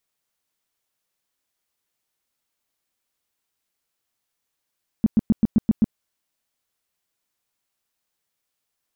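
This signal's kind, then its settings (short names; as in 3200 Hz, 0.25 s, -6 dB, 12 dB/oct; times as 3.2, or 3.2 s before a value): tone bursts 219 Hz, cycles 5, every 0.13 s, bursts 7, -11.5 dBFS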